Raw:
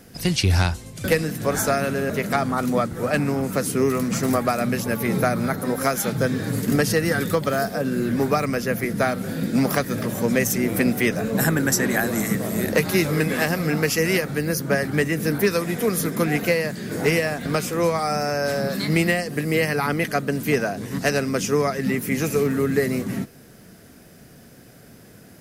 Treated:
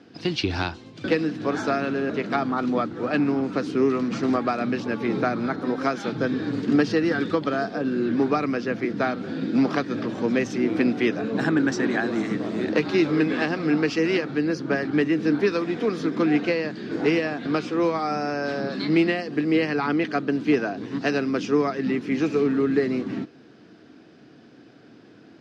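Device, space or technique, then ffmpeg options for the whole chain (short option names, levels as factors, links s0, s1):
kitchen radio: -af "highpass=170,equalizer=f=180:t=q:w=4:g=-5,equalizer=f=310:t=q:w=4:g=9,equalizer=f=570:t=q:w=4:g=-5,equalizer=f=2000:t=q:w=4:g=-5,lowpass=f=4400:w=0.5412,lowpass=f=4400:w=1.3066,volume=0.841"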